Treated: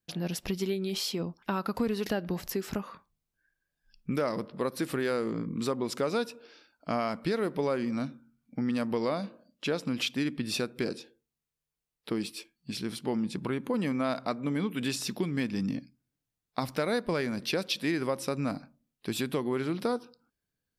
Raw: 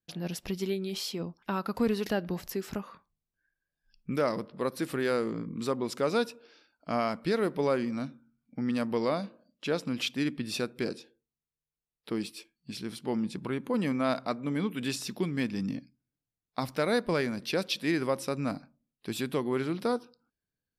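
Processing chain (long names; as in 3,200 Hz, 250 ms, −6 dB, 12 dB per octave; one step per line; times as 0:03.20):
downward compressor 2.5 to 1, threshold −31 dBFS, peak gain reduction 7 dB
level +3.5 dB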